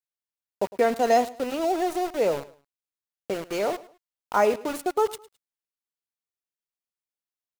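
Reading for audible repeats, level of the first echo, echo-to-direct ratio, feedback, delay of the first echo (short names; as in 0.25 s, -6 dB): 2, -19.0 dB, -18.5 dB, 29%, 0.106 s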